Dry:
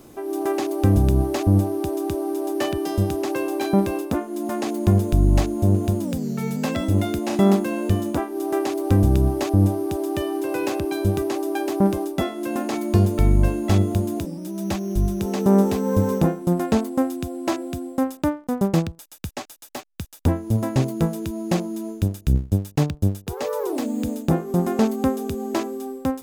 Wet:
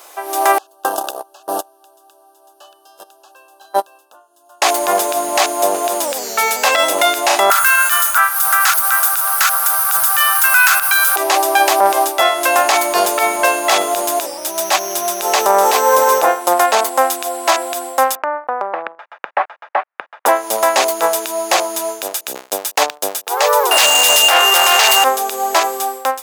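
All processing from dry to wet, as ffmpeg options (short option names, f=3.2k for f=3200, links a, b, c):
-filter_complex "[0:a]asettb=1/sr,asplit=3[a][b][c];[a]atrim=end=0.584[d];[b]atrim=start=0.58:end=4.62,asetpts=PTS-STARTPTS,afade=t=in:d=0.004:c=qsin,afade=t=out:st=4.036:d=0.004:c=qsin,asuperstop=centerf=2100:order=20:qfactor=2.4,agate=range=-35dB:threshold=-15dB:ratio=16:release=100:detection=peak[e];[c]atrim=start=4.616[f];[d][e]acrossfade=d=0.004:c1=hsin:c2=qsin[g];[g][f]acrossfade=d=0.004:c1=qsin:c2=hsin,asettb=1/sr,asplit=3[h][i][j];[h]atrim=end=7.504[k];[i]atrim=start=7.5:end=11.16,asetpts=PTS-STARTPTS,afade=t=in:d=0.004:c=qsin,afade=t=out:st=3.656:d=0.004:c=qsin,highpass=f=1.4k:t=q:w=11,aemphasis=mode=production:type=bsi[l];[j]atrim=start=11.156[m];[k][l]acrossfade=d=0.004:c1=hsin:c2=qsin[n];[n][m]acrossfade=d=0.004:c1=qsin:c2=hsin,asettb=1/sr,asplit=3[o][p][q];[o]atrim=end=18.154[r];[p]atrim=start=18.15:end=20.26,asetpts=PTS-STARTPTS,afade=t=in:d=0.004:c=qsin,afade=t=out:st=2.106:d=0.004:c=qsin,lowpass=f=1.8k:w=0.5412,lowpass=f=1.8k:w=1.3066,acompressor=threshold=-26dB:ratio=16:attack=3.2:release=140:knee=1:detection=peak[s];[q]atrim=start=20.256[t];[r][s]acrossfade=d=0.004:c1=hsin:c2=qsin[u];[u][t]acrossfade=d=0.004:c1=qsin:c2=hsin,asettb=1/sr,asplit=3[v][w][x];[v]atrim=end=23.714[y];[w]atrim=start=23.71:end=25.04,asetpts=PTS-STARTPTS,afade=t=in:d=0.004:c=qsin,afade=t=out:st=1.326:d=0.004:c=qsin,tiltshelf=f=1.5k:g=-5.5,asplit=2[z][aa];[aa]highpass=f=720:p=1,volume=33dB,asoftclip=type=tanh:threshold=-9.5dB[ab];[z][ab]amix=inputs=2:normalize=0,lowpass=f=6k:p=1,volume=-6dB,aeval=exprs='val(0)+0.0708*sin(2*PI*2800*n/s)':c=same[ac];[x]atrim=start=25.036[ad];[y][ac]acrossfade=d=0.004:c1=hsin:c2=qsin[ae];[ae][ad]acrossfade=d=0.004:c1=qsin:c2=hsin,highpass=f=680:w=0.5412,highpass=f=680:w=1.3066,dynaudnorm=f=150:g=5:m=9dB,alimiter=level_in=14.5dB:limit=-1dB:release=50:level=0:latency=1,volume=-1dB"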